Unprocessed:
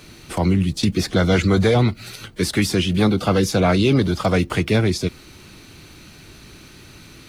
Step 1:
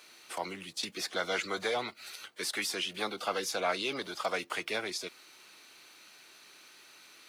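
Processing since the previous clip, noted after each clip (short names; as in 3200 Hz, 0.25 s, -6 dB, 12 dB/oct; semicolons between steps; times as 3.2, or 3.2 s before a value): HPF 670 Hz 12 dB/oct; gain -8.5 dB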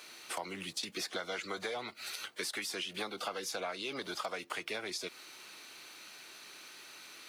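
compressor 10:1, threshold -39 dBFS, peak gain reduction 14 dB; gain +4 dB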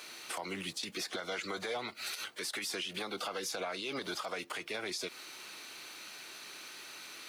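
limiter -31.5 dBFS, peak gain reduction 9 dB; gain +3.5 dB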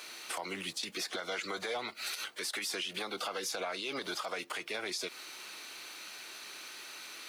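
low shelf 200 Hz -8 dB; gain +1.5 dB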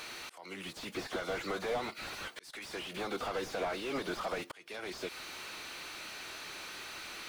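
auto swell 0.659 s; slew limiter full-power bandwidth 14 Hz; gain +4.5 dB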